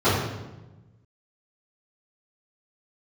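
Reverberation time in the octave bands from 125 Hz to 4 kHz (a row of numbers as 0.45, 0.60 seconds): 1.7, 1.5, 1.2, 1.0, 0.90, 0.80 seconds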